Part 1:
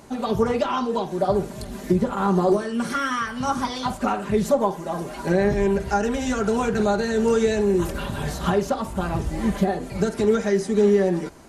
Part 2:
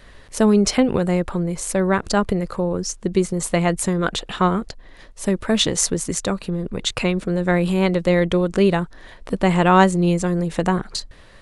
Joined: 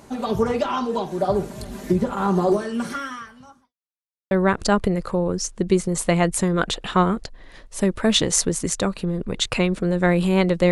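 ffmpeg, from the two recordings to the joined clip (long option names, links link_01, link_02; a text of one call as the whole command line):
ffmpeg -i cue0.wav -i cue1.wav -filter_complex "[0:a]apad=whole_dur=10.71,atrim=end=10.71,asplit=2[link_01][link_02];[link_01]atrim=end=3.74,asetpts=PTS-STARTPTS,afade=type=out:start_time=2.76:duration=0.98:curve=qua[link_03];[link_02]atrim=start=3.74:end=4.31,asetpts=PTS-STARTPTS,volume=0[link_04];[1:a]atrim=start=1.76:end=8.16,asetpts=PTS-STARTPTS,afade=type=in:duration=0.004:curve=hsin[link_05];[link_03][link_04][link_05]concat=n=3:v=0:a=1" out.wav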